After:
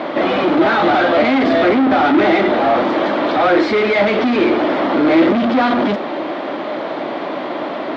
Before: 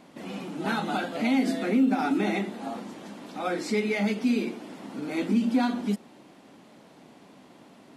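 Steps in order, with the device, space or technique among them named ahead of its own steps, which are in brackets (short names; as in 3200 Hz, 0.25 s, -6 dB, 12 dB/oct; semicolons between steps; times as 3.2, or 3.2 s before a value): overdrive pedal into a guitar cabinet (overdrive pedal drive 34 dB, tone 6500 Hz, clips at -13.5 dBFS; speaker cabinet 92–3500 Hz, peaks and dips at 200 Hz -4 dB, 330 Hz +8 dB, 600 Hz +9 dB, 1200 Hz +3 dB, 2700 Hz -6 dB); gain +4 dB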